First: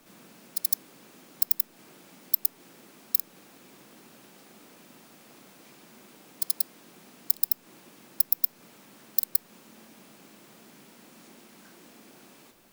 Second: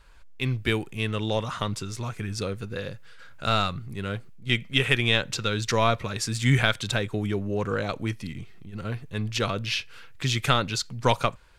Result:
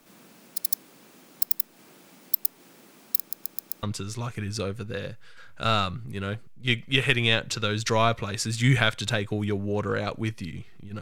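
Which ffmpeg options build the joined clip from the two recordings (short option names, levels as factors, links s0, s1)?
-filter_complex "[0:a]apad=whole_dur=11.01,atrim=end=11.01,asplit=5[s0][s1][s2][s3][s4];[s0]atrim=end=3.312[s5];[s1]atrim=start=3.178:end=3.312[s6];[s2]atrim=start=3.178:end=3.312[s7];[s3]atrim=start=3.178:end=3.312[s8];[s4]atrim=start=3.178:end=3.312[s9];[1:a]atrim=start=1.648:end=8.83[s10];[s5][s6]acrossfade=d=0.004:c1=hsin:c2=hsin[s11];[s11][s7]acrossfade=d=0.004:c1=hsin:c2=hsin[s12];[s12][s8]acrossfade=d=0.004:c1=hsin:c2=hsin[s13];[s13][s9]acrossfade=d=0.004:c1=hsin:c2=hsin[s14];[s14][s10]acrossfade=d=0.004:c1=hsin:c2=hsin"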